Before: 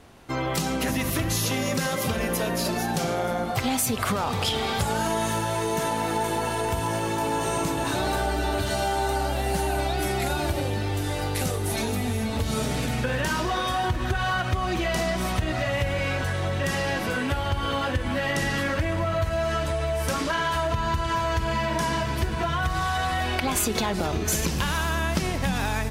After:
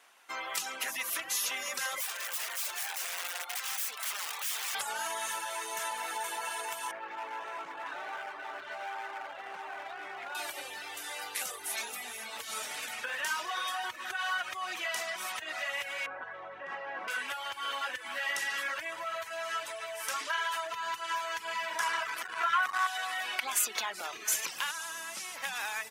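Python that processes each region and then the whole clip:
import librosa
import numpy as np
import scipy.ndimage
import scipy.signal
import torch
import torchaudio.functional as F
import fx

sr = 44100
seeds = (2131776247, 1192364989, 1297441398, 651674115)

y = fx.chain(x, sr, fx.highpass(hz=600.0, slope=12),
    fx.overflow_wrap(gain_db=25.0), at=(2.0, 4.75))
y = fx.chain(y, sr, fx.lowpass(hz=1700.0, slope=12),
    fx.clip_hard(threshold_db=-24.0), at=(6.91, 10.35))
y = fx.chain(y, sr, fx.lowpass(hz=1100.0, slope=12),
    fx.env_flatten(amount_pct=100), at=(16.06, 17.08))
y = fx.chain(y, sr, fx.peak_eq(hz=1300.0, db=10.0, octaves=0.89),
    fx.comb(ms=6.5, depth=0.38),
    fx.transformer_sat(knee_hz=470.0), at=(21.79, 22.87))
y = fx.chain(y, sr, fx.delta_mod(bps=64000, step_db=-39.0),
    fx.bass_treble(bass_db=6, treble_db=10),
    fx.comb_fb(f0_hz=110.0, decay_s=0.63, harmonics='all', damping=0.0, mix_pct=60), at=(24.71, 25.36))
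y = fx.peak_eq(y, sr, hz=4300.0, db=-4.5, octaves=0.56)
y = fx.dereverb_blind(y, sr, rt60_s=0.51)
y = scipy.signal.sosfilt(scipy.signal.butter(2, 1200.0, 'highpass', fs=sr, output='sos'), y)
y = F.gain(torch.from_numpy(y), -2.0).numpy()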